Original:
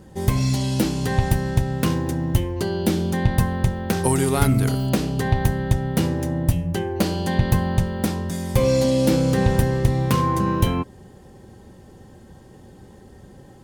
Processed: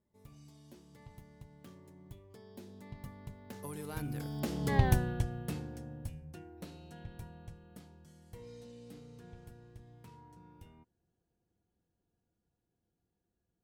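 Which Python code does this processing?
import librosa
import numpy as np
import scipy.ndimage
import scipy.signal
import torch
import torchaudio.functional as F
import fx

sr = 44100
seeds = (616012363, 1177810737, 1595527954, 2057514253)

y = fx.doppler_pass(x, sr, speed_mps=35, closest_m=5.6, pass_at_s=4.84)
y = F.gain(torch.from_numpy(y), -6.0).numpy()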